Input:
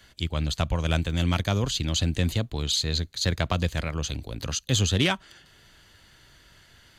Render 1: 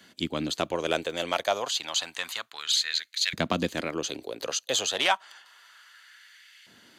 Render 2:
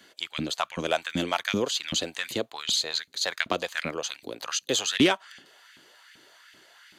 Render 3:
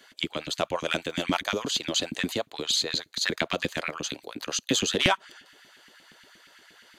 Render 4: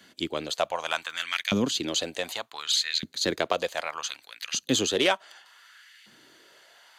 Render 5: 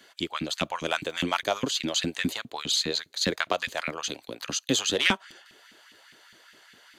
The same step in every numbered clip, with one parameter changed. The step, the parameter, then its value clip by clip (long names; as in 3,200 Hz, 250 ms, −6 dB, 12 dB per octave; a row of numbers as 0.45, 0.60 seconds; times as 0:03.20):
auto-filter high-pass, speed: 0.3, 2.6, 8.5, 0.66, 4.9 Hertz